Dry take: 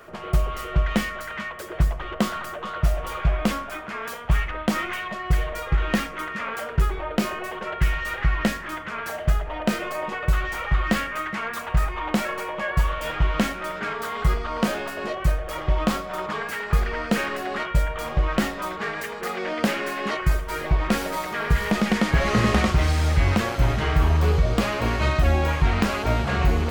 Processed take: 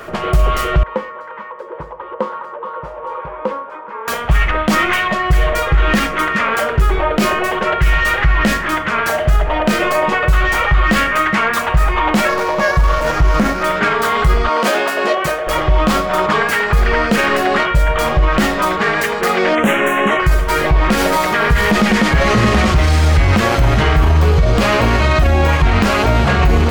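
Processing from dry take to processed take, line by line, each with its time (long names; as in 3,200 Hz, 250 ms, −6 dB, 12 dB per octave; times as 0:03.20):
0:00.83–0:04.08: pair of resonant band-passes 690 Hz, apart 0.83 octaves
0:12.29–0:13.63: running median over 15 samples
0:14.49–0:15.47: high-pass filter 320 Hz
0:19.55–0:20.20: Butterworth band-reject 4,700 Hz, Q 1.3
whole clip: high-shelf EQ 9,100 Hz −3.5 dB; boost into a limiter +18 dB; level −3.5 dB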